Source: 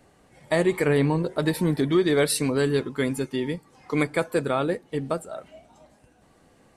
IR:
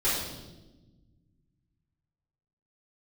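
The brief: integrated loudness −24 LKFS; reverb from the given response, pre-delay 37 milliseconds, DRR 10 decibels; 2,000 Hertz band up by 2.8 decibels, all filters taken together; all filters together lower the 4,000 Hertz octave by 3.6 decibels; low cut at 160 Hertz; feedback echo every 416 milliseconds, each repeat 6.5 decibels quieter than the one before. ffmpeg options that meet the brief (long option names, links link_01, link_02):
-filter_complex "[0:a]highpass=160,equalizer=frequency=2000:width_type=o:gain=4.5,equalizer=frequency=4000:width_type=o:gain=-5.5,aecho=1:1:416|832|1248|1664|2080|2496:0.473|0.222|0.105|0.0491|0.0231|0.0109,asplit=2[link_01][link_02];[1:a]atrim=start_sample=2205,adelay=37[link_03];[link_02][link_03]afir=irnorm=-1:irlink=0,volume=-21.5dB[link_04];[link_01][link_04]amix=inputs=2:normalize=0,volume=-1dB"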